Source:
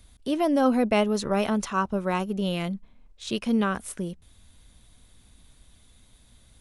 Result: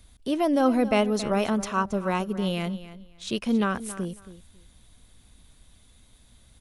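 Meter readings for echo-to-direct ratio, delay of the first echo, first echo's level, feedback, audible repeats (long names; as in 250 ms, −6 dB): −15.0 dB, 274 ms, −15.0 dB, 20%, 2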